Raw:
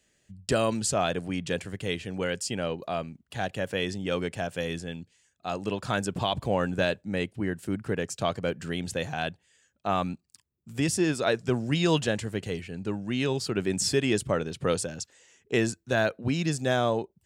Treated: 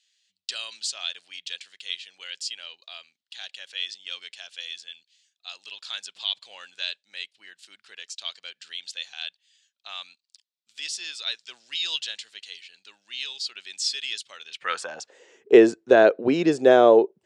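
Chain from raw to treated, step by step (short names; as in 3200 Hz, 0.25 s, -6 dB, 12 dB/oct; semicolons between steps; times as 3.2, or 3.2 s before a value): air absorption 96 m; high-pass sweep 3800 Hz -> 400 Hz, 14.42–15.18; tilt shelf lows +3 dB, about 1100 Hz; gain +6 dB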